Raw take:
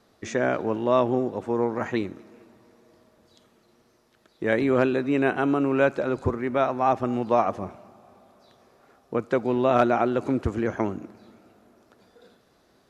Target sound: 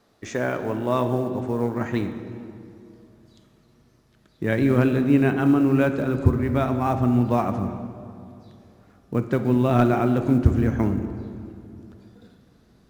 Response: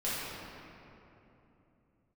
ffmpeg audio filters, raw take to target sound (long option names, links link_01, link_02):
-filter_complex "[0:a]acrusher=bits=8:mode=log:mix=0:aa=0.000001,asubboost=boost=4.5:cutoff=240,asplit=2[link_01][link_02];[1:a]atrim=start_sample=2205,asetrate=61740,aresample=44100,adelay=7[link_03];[link_02][link_03]afir=irnorm=-1:irlink=0,volume=-12.5dB[link_04];[link_01][link_04]amix=inputs=2:normalize=0,volume=-1dB"